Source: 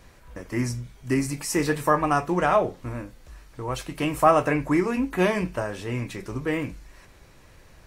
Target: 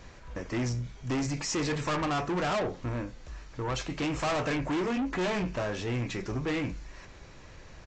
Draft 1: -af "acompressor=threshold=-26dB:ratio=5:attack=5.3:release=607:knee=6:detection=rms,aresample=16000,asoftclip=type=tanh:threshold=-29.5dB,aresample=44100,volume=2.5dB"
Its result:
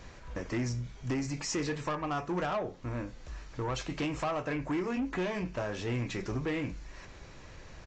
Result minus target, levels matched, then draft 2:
compressor: peak gain reduction +15 dB
-af "aresample=16000,asoftclip=type=tanh:threshold=-29.5dB,aresample=44100,volume=2.5dB"

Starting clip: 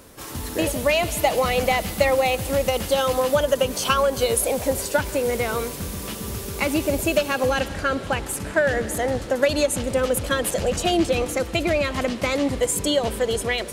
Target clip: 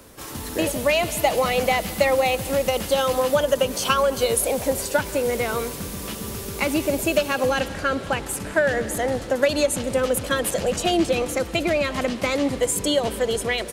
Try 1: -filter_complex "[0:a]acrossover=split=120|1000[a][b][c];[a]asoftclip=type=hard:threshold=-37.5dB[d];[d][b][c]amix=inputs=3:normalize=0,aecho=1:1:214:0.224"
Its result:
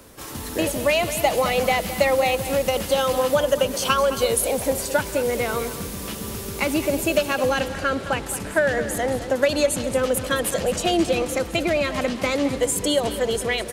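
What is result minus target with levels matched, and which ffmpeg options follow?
echo-to-direct +8.5 dB
-filter_complex "[0:a]acrossover=split=120|1000[a][b][c];[a]asoftclip=type=hard:threshold=-37.5dB[d];[d][b][c]amix=inputs=3:normalize=0,aecho=1:1:214:0.0668"

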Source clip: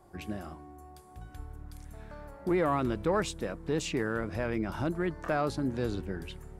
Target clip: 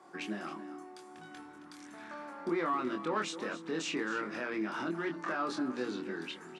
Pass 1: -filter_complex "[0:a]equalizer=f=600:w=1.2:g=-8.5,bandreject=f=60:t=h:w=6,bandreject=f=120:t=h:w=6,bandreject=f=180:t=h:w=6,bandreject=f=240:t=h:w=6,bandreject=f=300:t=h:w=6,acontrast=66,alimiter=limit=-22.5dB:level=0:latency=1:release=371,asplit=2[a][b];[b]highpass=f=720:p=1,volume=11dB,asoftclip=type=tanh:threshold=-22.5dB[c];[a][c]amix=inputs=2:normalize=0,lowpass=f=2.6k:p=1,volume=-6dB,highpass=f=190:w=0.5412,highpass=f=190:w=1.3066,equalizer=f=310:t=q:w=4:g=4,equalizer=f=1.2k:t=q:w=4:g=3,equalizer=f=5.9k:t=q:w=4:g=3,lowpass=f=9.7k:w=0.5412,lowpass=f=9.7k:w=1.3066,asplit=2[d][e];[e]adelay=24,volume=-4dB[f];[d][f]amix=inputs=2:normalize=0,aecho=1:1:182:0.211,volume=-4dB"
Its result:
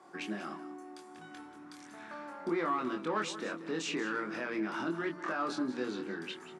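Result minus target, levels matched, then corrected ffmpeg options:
echo 87 ms early
-filter_complex "[0:a]equalizer=f=600:w=1.2:g=-8.5,bandreject=f=60:t=h:w=6,bandreject=f=120:t=h:w=6,bandreject=f=180:t=h:w=6,bandreject=f=240:t=h:w=6,bandreject=f=300:t=h:w=6,acontrast=66,alimiter=limit=-22.5dB:level=0:latency=1:release=371,asplit=2[a][b];[b]highpass=f=720:p=1,volume=11dB,asoftclip=type=tanh:threshold=-22.5dB[c];[a][c]amix=inputs=2:normalize=0,lowpass=f=2.6k:p=1,volume=-6dB,highpass=f=190:w=0.5412,highpass=f=190:w=1.3066,equalizer=f=310:t=q:w=4:g=4,equalizer=f=1.2k:t=q:w=4:g=3,equalizer=f=5.9k:t=q:w=4:g=3,lowpass=f=9.7k:w=0.5412,lowpass=f=9.7k:w=1.3066,asplit=2[d][e];[e]adelay=24,volume=-4dB[f];[d][f]amix=inputs=2:normalize=0,aecho=1:1:269:0.211,volume=-4dB"

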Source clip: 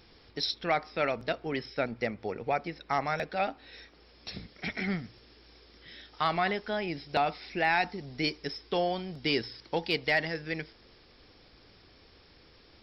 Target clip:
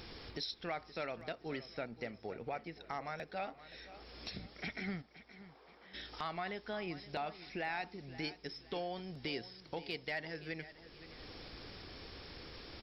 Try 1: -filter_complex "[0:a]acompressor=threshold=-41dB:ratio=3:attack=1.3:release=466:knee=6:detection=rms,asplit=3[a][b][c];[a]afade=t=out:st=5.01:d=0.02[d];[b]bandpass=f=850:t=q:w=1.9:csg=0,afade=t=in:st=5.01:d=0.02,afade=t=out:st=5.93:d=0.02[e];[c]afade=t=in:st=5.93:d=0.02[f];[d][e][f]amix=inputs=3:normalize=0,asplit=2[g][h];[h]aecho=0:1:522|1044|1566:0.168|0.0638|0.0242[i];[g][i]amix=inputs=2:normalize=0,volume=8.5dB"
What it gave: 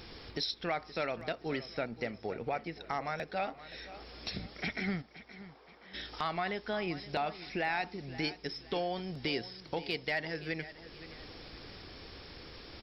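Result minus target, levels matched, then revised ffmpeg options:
compressor: peak gain reduction -6 dB
-filter_complex "[0:a]acompressor=threshold=-50dB:ratio=3:attack=1.3:release=466:knee=6:detection=rms,asplit=3[a][b][c];[a]afade=t=out:st=5.01:d=0.02[d];[b]bandpass=f=850:t=q:w=1.9:csg=0,afade=t=in:st=5.01:d=0.02,afade=t=out:st=5.93:d=0.02[e];[c]afade=t=in:st=5.93:d=0.02[f];[d][e][f]amix=inputs=3:normalize=0,asplit=2[g][h];[h]aecho=0:1:522|1044|1566:0.168|0.0638|0.0242[i];[g][i]amix=inputs=2:normalize=0,volume=8.5dB"

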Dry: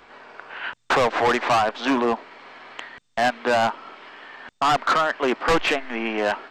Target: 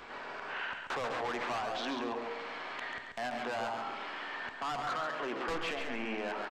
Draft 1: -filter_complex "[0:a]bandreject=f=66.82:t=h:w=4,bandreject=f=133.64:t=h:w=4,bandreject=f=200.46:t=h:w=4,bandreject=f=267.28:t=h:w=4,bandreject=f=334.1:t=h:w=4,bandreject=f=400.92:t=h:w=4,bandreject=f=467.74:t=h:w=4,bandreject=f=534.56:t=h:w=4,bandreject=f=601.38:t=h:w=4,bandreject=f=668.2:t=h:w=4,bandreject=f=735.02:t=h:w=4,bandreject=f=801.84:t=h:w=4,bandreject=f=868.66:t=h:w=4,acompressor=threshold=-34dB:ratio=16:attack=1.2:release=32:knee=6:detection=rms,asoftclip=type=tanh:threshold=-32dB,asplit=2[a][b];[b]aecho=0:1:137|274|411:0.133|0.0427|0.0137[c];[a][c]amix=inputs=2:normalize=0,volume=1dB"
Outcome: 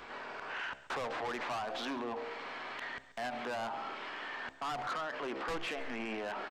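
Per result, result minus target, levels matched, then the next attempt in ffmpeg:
echo-to-direct -12 dB; soft clip: distortion +11 dB
-filter_complex "[0:a]bandreject=f=66.82:t=h:w=4,bandreject=f=133.64:t=h:w=4,bandreject=f=200.46:t=h:w=4,bandreject=f=267.28:t=h:w=4,bandreject=f=334.1:t=h:w=4,bandreject=f=400.92:t=h:w=4,bandreject=f=467.74:t=h:w=4,bandreject=f=534.56:t=h:w=4,bandreject=f=601.38:t=h:w=4,bandreject=f=668.2:t=h:w=4,bandreject=f=735.02:t=h:w=4,bandreject=f=801.84:t=h:w=4,bandreject=f=868.66:t=h:w=4,acompressor=threshold=-34dB:ratio=16:attack=1.2:release=32:knee=6:detection=rms,asoftclip=type=tanh:threshold=-32dB,asplit=2[a][b];[b]aecho=0:1:137|274|411|548:0.531|0.17|0.0544|0.0174[c];[a][c]amix=inputs=2:normalize=0,volume=1dB"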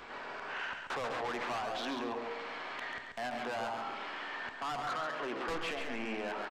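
soft clip: distortion +11 dB
-filter_complex "[0:a]bandreject=f=66.82:t=h:w=4,bandreject=f=133.64:t=h:w=4,bandreject=f=200.46:t=h:w=4,bandreject=f=267.28:t=h:w=4,bandreject=f=334.1:t=h:w=4,bandreject=f=400.92:t=h:w=4,bandreject=f=467.74:t=h:w=4,bandreject=f=534.56:t=h:w=4,bandreject=f=601.38:t=h:w=4,bandreject=f=668.2:t=h:w=4,bandreject=f=735.02:t=h:w=4,bandreject=f=801.84:t=h:w=4,bandreject=f=868.66:t=h:w=4,acompressor=threshold=-34dB:ratio=16:attack=1.2:release=32:knee=6:detection=rms,asoftclip=type=tanh:threshold=-25.5dB,asplit=2[a][b];[b]aecho=0:1:137|274|411|548:0.531|0.17|0.0544|0.0174[c];[a][c]amix=inputs=2:normalize=0,volume=1dB"

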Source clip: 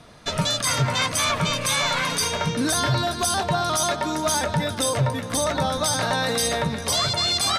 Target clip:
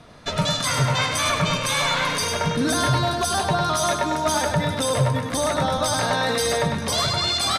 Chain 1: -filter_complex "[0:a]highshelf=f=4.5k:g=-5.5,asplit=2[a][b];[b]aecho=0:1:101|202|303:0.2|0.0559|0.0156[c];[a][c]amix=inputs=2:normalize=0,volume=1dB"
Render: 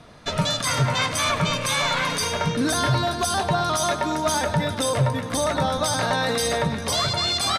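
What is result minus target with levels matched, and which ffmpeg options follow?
echo-to-direct -8.5 dB
-filter_complex "[0:a]highshelf=f=4.5k:g=-5.5,asplit=2[a][b];[b]aecho=0:1:101|202|303|404:0.531|0.149|0.0416|0.0117[c];[a][c]amix=inputs=2:normalize=0,volume=1dB"

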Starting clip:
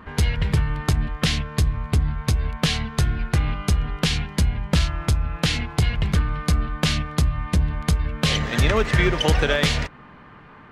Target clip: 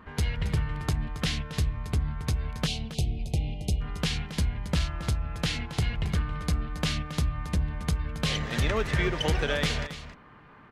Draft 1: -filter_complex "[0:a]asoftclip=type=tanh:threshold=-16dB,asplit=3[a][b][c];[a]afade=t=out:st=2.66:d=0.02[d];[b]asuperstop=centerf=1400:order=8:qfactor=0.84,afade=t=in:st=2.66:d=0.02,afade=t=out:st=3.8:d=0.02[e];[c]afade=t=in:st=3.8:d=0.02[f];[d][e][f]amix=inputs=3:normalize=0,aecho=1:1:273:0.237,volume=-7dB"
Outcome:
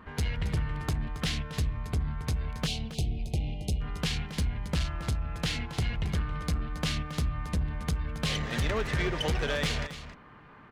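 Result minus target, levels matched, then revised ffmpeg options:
soft clip: distortion +15 dB
-filter_complex "[0:a]asoftclip=type=tanh:threshold=-6dB,asplit=3[a][b][c];[a]afade=t=out:st=2.66:d=0.02[d];[b]asuperstop=centerf=1400:order=8:qfactor=0.84,afade=t=in:st=2.66:d=0.02,afade=t=out:st=3.8:d=0.02[e];[c]afade=t=in:st=3.8:d=0.02[f];[d][e][f]amix=inputs=3:normalize=0,aecho=1:1:273:0.237,volume=-7dB"

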